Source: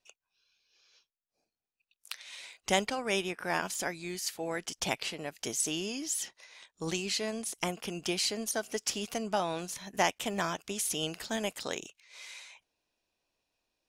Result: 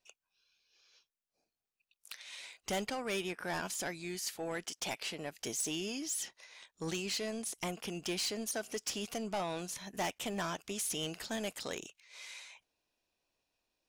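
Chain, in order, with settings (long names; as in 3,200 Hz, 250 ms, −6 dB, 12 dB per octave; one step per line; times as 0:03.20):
0:04.64–0:05.11: high-pass filter 330 Hz 6 dB per octave
soft clipping −28.5 dBFS, distortion −10 dB
level −1.5 dB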